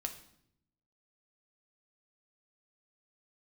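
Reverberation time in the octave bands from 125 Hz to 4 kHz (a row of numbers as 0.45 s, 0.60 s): 1.2 s, 1.1 s, 0.75 s, 0.65 s, 0.60 s, 0.60 s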